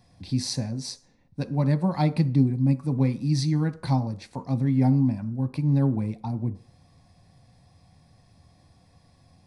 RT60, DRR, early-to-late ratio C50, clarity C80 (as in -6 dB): 0.45 s, 8.5 dB, 17.0 dB, 20.5 dB